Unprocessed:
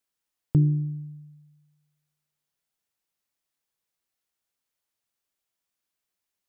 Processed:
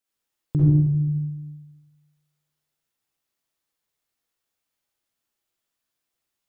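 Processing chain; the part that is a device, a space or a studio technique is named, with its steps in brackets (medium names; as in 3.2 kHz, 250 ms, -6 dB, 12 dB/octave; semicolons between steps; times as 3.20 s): bathroom (reverberation RT60 0.95 s, pre-delay 43 ms, DRR -5.5 dB); trim -3 dB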